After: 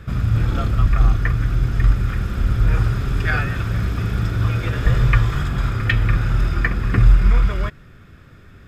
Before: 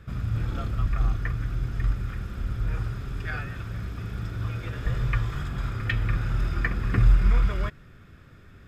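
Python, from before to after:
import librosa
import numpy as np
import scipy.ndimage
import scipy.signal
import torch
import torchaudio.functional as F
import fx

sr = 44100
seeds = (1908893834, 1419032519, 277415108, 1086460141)

y = fx.rider(x, sr, range_db=4, speed_s=2.0)
y = F.gain(torch.from_numpy(y), 8.5).numpy()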